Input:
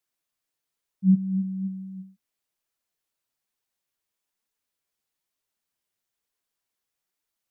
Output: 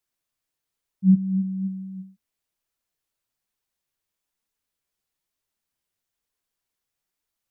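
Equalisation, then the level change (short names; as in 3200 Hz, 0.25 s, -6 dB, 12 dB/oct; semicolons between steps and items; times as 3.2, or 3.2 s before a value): low shelf 120 Hz +8 dB; 0.0 dB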